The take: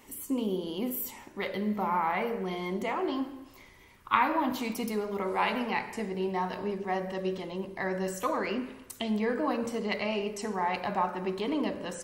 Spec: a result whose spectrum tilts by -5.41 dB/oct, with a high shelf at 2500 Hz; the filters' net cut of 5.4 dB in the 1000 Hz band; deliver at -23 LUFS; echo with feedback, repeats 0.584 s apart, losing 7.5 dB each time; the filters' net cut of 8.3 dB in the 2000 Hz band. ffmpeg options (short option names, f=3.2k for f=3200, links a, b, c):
-af "equalizer=f=1k:t=o:g=-4.5,equalizer=f=2k:t=o:g=-7,highshelf=f=2.5k:g=-4,aecho=1:1:584|1168|1752|2336|2920:0.422|0.177|0.0744|0.0312|0.0131,volume=10.5dB"